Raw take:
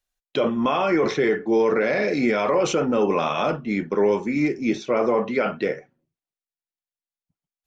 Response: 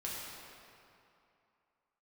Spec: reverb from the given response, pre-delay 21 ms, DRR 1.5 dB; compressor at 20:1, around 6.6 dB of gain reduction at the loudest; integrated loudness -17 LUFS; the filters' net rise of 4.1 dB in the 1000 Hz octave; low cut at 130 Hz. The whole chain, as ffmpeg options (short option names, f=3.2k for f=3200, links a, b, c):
-filter_complex "[0:a]highpass=130,equalizer=f=1k:t=o:g=5,acompressor=threshold=-21dB:ratio=20,asplit=2[a][b];[1:a]atrim=start_sample=2205,adelay=21[c];[b][c]afir=irnorm=-1:irlink=0,volume=-3.5dB[d];[a][d]amix=inputs=2:normalize=0,volume=7dB"